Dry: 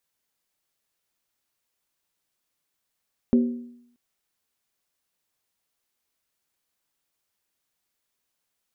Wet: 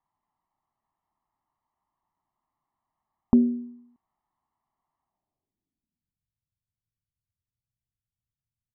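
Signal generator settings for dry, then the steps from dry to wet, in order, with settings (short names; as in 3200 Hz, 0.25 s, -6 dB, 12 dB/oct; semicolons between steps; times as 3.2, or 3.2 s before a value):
skin hit, lowest mode 241 Hz, decay 0.74 s, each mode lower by 9.5 dB, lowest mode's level -13 dB
comb 1 ms, depth 80%; low-pass sweep 960 Hz -> 110 Hz, 5.02–6.3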